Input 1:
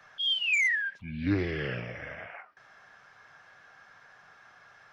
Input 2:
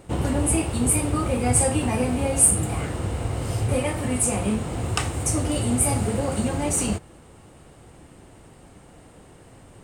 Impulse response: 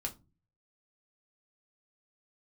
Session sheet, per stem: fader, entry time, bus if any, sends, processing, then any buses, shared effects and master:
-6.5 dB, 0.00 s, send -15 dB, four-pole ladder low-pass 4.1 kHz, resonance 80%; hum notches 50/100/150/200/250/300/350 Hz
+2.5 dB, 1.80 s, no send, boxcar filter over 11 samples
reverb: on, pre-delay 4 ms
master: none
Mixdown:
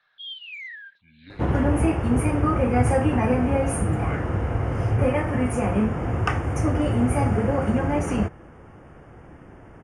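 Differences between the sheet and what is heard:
stem 2: entry 1.80 s -> 1.30 s; master: extra peaking EQ 1.6 kHz +5.5 dB 0.88 oct

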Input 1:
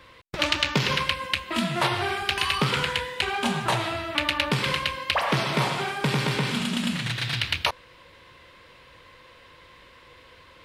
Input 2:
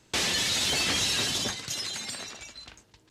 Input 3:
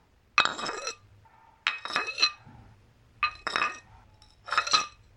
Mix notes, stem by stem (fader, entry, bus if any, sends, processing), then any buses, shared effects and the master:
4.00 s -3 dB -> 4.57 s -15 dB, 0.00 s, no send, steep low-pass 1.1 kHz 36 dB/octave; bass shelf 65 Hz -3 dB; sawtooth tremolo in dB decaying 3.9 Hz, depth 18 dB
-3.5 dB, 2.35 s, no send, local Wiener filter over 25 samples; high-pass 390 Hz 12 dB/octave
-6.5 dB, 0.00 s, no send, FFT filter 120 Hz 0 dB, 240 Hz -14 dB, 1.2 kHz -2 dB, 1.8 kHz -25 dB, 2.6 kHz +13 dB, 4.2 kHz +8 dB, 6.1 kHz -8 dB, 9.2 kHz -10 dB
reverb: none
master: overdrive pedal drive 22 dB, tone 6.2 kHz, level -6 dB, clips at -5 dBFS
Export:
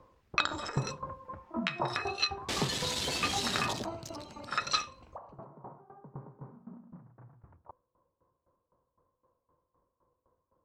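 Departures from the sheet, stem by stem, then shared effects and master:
stem 2: missing high-pass 390 Hz 12 dB/octave; stem 3: missing FFT filter 120 Hz 0 dB, 240 Hz -14 dB, 1.2 kHz -2 dB, 1.8 kHz -25 dB, 2.6 kHz +13 dB, 4.2 kHz +8 dB, 6.1 kHz -8 dB, 9.2 kHz -10 dB; master: missing overdrive pedal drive 22 dB, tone 6.2 kHz, level -6 dB, clips at -5 dBFS

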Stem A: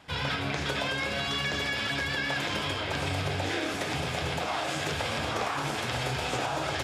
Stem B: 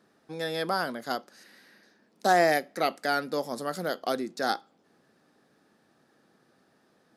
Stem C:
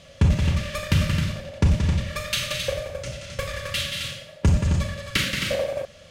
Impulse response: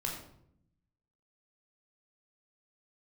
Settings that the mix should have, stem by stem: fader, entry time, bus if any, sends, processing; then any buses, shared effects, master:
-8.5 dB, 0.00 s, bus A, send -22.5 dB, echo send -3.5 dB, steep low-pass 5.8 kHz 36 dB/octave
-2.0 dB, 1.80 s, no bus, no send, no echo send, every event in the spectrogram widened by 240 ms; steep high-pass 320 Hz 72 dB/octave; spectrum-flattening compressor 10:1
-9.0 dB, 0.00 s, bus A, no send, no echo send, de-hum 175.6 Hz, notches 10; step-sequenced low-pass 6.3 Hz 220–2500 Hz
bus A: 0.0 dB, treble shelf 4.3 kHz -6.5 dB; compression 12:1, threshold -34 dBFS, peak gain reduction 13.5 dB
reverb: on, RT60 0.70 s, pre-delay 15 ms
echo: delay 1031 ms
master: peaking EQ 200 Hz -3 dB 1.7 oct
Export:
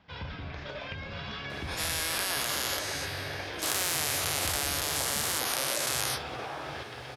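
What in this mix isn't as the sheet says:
stem B: entry 1.80 s -> 1.50 s; stem C -9.0 dB -> -17.5 dB

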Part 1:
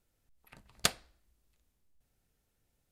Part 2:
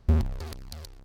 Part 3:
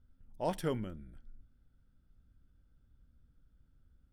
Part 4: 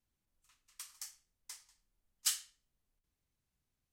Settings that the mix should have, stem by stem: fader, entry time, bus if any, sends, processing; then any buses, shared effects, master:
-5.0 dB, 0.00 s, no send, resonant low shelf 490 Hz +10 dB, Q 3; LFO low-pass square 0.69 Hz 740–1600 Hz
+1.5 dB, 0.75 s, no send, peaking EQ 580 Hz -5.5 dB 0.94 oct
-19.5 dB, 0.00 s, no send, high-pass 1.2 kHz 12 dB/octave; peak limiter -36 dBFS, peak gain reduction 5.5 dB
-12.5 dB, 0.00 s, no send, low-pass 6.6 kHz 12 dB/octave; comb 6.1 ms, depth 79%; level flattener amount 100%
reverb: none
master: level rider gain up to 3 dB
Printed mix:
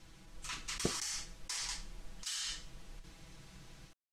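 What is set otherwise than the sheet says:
stem 1 -5.0 dB -> -12.5 dB; stem 2: muted; stem 3: muted

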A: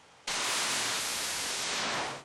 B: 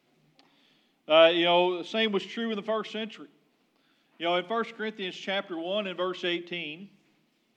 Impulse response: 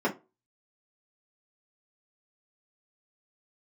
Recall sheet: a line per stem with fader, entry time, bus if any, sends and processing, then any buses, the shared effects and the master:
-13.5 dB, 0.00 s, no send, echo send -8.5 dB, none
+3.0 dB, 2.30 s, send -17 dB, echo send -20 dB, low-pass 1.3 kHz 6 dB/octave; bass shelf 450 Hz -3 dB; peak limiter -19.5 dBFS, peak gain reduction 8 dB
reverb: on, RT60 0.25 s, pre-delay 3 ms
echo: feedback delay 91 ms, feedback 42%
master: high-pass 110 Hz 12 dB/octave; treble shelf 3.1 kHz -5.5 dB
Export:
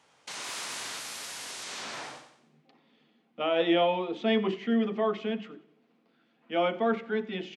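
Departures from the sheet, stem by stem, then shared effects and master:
stem A -13.5 dB -> -7.0 dB; master: missing treble shelf 3.1 kHz -5.5 dB

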